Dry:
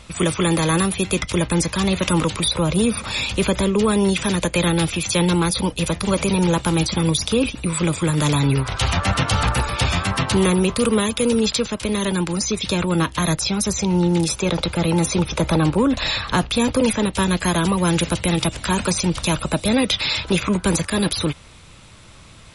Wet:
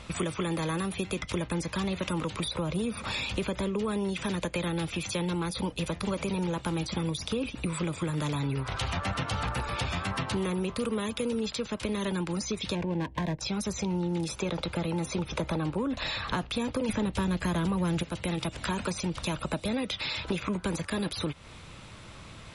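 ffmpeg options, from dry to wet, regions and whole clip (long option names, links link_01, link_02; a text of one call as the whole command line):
ffmpeg -i in.wav -filter_complex "[0:a]asettb=1/sr,asplit=3[link_01][link_02][link_03];[link_01]atrim=end=12.754[link_04];[link_02]atrim=start=12.75:end=13.41,asetpts=PTS-STARTPTS,afade=type=in:duration=0.004:curve=qsin,afade=type=out:start_time=0.656:duration=0.004:curve=qsin,adynamicsmooth=sensitivity=1.5:basefreq=650,asuperstop=centerf=1300:order=4:qfactor=2.4[link_05];[link_03]atrim=start=13.406[link_06];[link_04][link_05]acrossfade=duration=0.004:curve1=hsin:curve2=qsin[link_07];[link_07][link_06]acrossfade=duration=0.004:curve1=qsin:curve2=hsin,asettb=1/sr,asplit=3[link_08][link_09][link_10];[link_08]atrim=end=16.894[link_11];[link_09]atrim=start=16.89:end=18.03,asetpts=PTS-STARTPTS,afade=type=in:duration=0.004:curve=qsin,afade=type=out:start_time=1.136:duration=0.004:curve=qsin,lowshelf=frequency=200:gain=8,acontrast=79[link_12];[link_10]atrim=start=18.026[link_13];[link_11][link_12]acrossfade=duration=0.004:curve1=hsin:curve2=qsin[link_14];[link_14][link_13]acrossfade=duration=0.004:curve1=qsin:curve2=hsin,lowshelf=frequency=63:gain=-5.5,acompressor=threshold=-28dB:ratio=6,highshelf=frequency=5200:gain=-9" out.wav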